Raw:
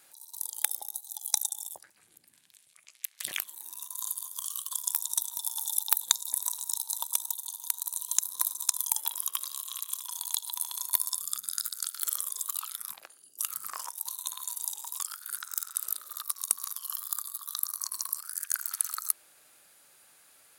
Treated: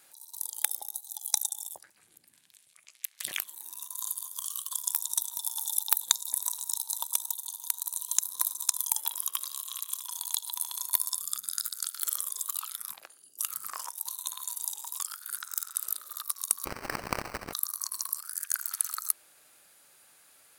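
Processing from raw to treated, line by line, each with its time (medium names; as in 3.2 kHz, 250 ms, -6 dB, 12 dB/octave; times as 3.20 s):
16.65–17.53 s: sample-rate reducer 3.5 kHz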